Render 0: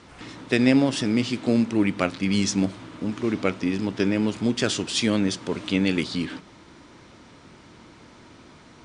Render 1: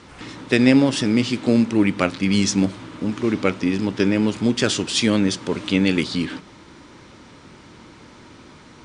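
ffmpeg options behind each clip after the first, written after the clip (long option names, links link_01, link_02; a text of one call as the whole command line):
ffmpeg -i in.wav -af "bandreject=frequency=680:width=12,volume=4dB" out.wav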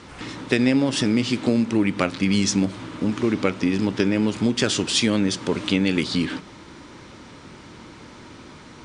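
ffmpeg -i in.wav -af "acompressor=threshold=-19dB:ratio=3,volume=2dB" out.wav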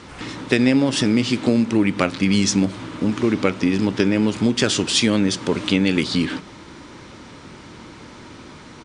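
ffmpeg -i in.wav -af "aresample=32000,aresample=44100,volume=2.5dB" out.wav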